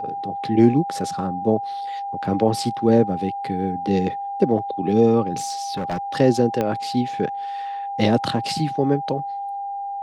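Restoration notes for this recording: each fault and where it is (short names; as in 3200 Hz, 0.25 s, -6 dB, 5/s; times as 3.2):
tone 800 Hz -26 dBFS
5.36–5.98 clipped -21 dBFS
6.61 pop -10 dBFS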